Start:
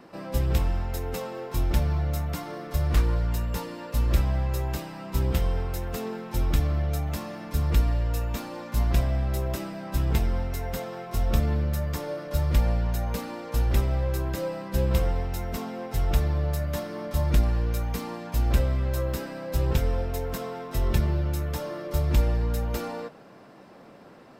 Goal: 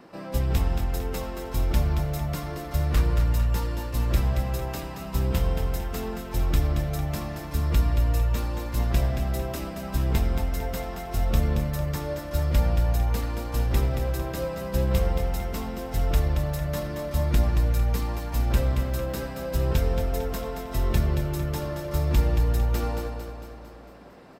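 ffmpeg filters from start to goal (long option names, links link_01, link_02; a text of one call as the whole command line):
ffmpeg -i in.wav -af "aecho=1:1:226|452|678|904|1130|1356|1582:0.447|0.246|0.135|0.0743|0.0409|0.0225|0.0124" out.wav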